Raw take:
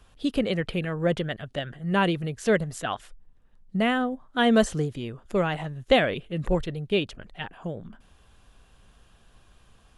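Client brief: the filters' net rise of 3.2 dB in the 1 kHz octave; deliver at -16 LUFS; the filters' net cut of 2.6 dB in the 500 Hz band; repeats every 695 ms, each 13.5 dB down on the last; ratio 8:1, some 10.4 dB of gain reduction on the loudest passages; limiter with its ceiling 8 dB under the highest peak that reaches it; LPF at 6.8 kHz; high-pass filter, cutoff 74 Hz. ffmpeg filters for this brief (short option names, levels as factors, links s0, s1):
-af "highpass=74,lowpass=6800,equalizer=f=500:t=o:g=-5,equalizer=f=1000:t=o:g=6.5,acompressor=threshold=0.0501:ratio=8,alimiter=limit=0.0668:level=0:latency=1,aecho=1:1:695|1390:0.211|0.0444,volume=8.41"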